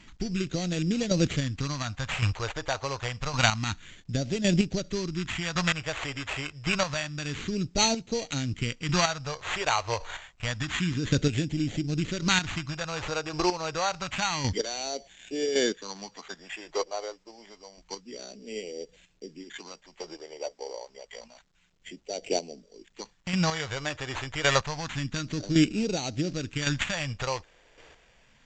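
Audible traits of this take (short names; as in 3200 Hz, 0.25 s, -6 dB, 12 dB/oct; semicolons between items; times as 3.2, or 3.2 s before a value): aliases and images of a low sample rate 5200 Hz, jitter 0%; phasing stages 2, 0.28 Hz, lowest notch 210–1100 Hz; chopped level 0.9 Hz, depth 60%, duty 15%; A-law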